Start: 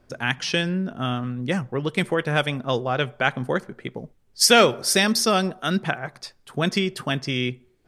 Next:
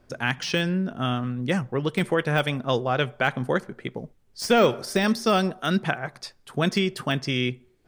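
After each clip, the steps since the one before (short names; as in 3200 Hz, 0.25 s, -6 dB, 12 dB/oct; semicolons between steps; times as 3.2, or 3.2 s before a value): de-esser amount 65%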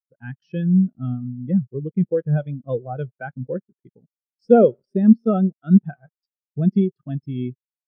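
low shelf 440 Hz +5 dB; sample gate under -33.5 dBFS; spectral expander 2.5:1; gain +3.5 dB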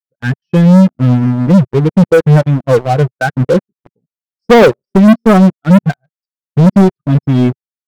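sample leveller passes 5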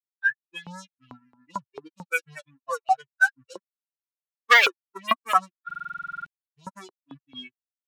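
per-bin expansion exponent 3; LFO high-pass saw up 4.5 Hz 990–3000 Hz; stuck buffer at 5.66, samples 2048, times 12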